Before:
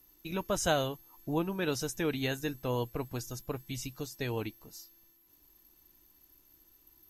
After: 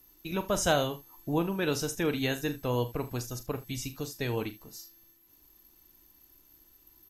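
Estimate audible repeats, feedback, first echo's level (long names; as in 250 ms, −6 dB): 2, repeats not evenly spaced, −12.0 dB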